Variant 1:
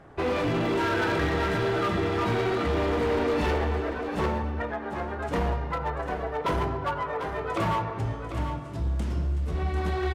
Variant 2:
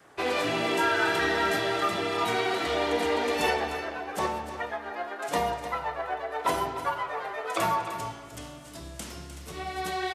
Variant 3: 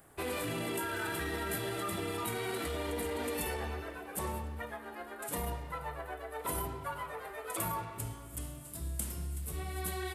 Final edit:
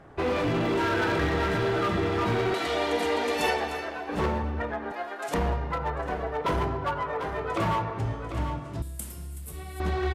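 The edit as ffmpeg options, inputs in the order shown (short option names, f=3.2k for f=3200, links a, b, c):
-filter_complex "[1:a]asplit=2[a][b];[0:a]asplit=4[c][d][e][f];[c]atrim=end=2.542[g];[a]atrim=start=2.538:end=4.092[h];[d]atrim=start=4.088:end=4.922[i];[b]atrim=start=4.918:end=5.342[j];[e]atrim=start=5.338:end=8.822[k];[2:a]atrim=start=8.818:end=9.802[l];[f]atrim=start=9.798[m];[g][h]acrossfade=d=0.004:c1=hsin:c2=hsin[n];[n][i]acrossfade=d=0.004:c1=hsin:c2=hsin[o];[o][j]acrossfade=d=0.004:c1=hsin:c2=hsin[p];[p][k]acrossfade=d=0.004:c1=hsin:c2=hsin[q];[q][l]acrossfade=d=0.004:c1=hsin:c2=hsin[r];[r][m]acrossfade=d=0.004:c1=hsin:c2=hsin"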